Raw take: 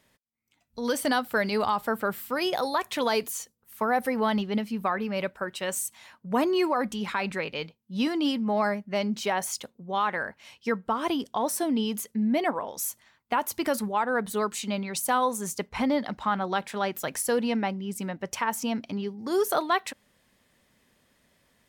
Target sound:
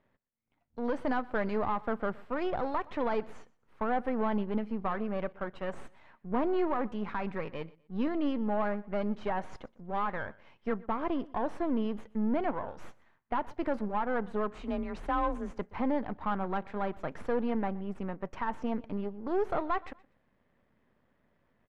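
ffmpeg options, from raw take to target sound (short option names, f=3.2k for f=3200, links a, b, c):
-filter_complex "[0:a]aeval=exprs='if(lt(val(0),0),0.251*val(0),val(0))':c=same,lowpass=1.5k,asoftclip=type=tanh:threshold=-18.5dB,asettb=1/sr,asplit=3[a][b][c];[a]atrim=end=14.524[d];[b]atrim=start=14.52:end=15.51,asetpts=PTS-STARTPTS,afade=t=in:d=0.004:c=qsin,afade=t=out:st=0.986:d=0.004:c=qsin,afreqshift=28[e];[c]atrim=start=15.506[f];[d][e]acrossfade=d=0.004:c1=hsin:c2=qsin[g];[g][f]acrossfade=d=0.004:c1=qsin:c2=hsin,aecho=1:1:122|244:0.075|0.0232"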